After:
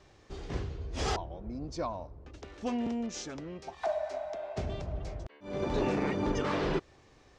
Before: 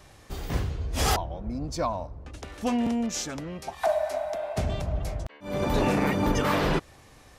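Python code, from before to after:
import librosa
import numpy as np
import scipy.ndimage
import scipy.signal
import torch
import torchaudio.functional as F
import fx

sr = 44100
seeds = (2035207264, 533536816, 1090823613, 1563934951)

y = scipy.signal.sosfilt(scipy.signal.butter(4, 6800.0, 'lowpass', fs=sr, output='sos'), x)
y = fx.peak_eq(y, sr, hz=380.0, db=7.0, octaves=0.57)
y = y * librosa.db_to_amplitude(-8.0)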